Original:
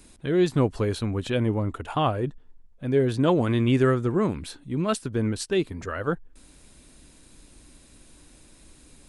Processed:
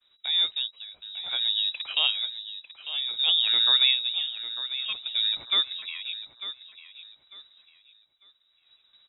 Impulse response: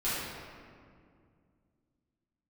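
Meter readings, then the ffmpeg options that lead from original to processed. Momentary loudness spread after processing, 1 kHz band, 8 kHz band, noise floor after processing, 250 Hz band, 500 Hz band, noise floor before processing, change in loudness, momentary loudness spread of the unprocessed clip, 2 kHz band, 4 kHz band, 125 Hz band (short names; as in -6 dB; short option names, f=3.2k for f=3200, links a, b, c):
18 LU, -13.5 dB, under -40 dB, -67 dBFS, under -35 dB, under -25 dB, -54 dBFS, +1.0 dB, 9 LU, 0.0 dB, +18.5 dB, under -40 dB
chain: -af "agate=range=-33dB:threshold=-43dB:ratio=3:detection=peak,tremolo=f=0.55:d=0.88,lowpass=f=3.3k:t=q:w=0.5098,lowpass=f=3.3k:t=q:w=0.6013,lowpass=f=3.3k:t=q:w=0.9,lowpass=f=3.3k:t=q:w=2.563,afreqshift=-3900,aecho=1:1:898|1796|2694:0.237|0.064|0.0173"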